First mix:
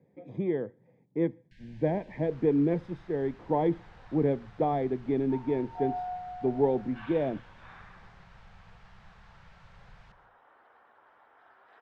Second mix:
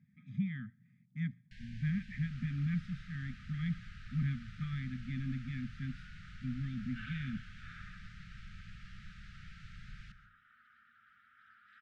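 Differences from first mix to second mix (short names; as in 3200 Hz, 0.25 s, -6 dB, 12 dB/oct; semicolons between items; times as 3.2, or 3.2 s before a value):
first sound +4.5 dB; master: add brick-wall FIR band-stop 250–1200 Hz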